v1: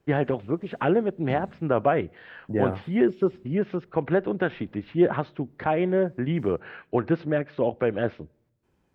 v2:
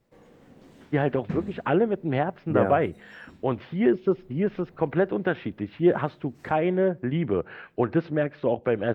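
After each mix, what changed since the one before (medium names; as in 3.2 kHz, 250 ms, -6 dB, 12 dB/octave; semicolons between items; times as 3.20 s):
first voice: entry +0.85 s; background +6.0 dB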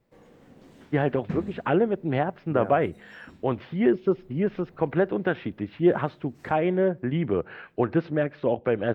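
second voice -9.5 dB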